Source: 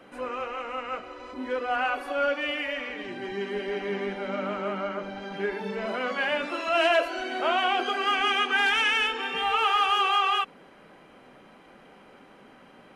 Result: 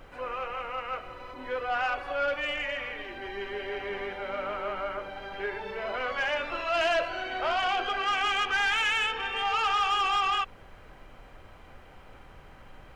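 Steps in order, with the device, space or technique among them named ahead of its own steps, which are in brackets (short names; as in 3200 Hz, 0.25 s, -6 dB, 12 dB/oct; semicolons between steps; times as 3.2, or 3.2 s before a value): aircraft cabin announcement (BPF 480–4100 Hz; soft clip -20.5 dBFS, distortion -15 dB; brown noise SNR 18 dB)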